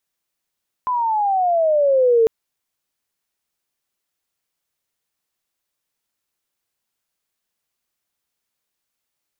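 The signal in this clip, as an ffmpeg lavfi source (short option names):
-f lavfi -i "aevalsrc='pow(10,(-10.5+7*(t/1.4-1))/20)*sin(2*PI*1020*1.4/(-14.5*log(2)/12)*(exp(-14.5*log(2)/12*t/1.4)-1))':d=1.4:s=44100"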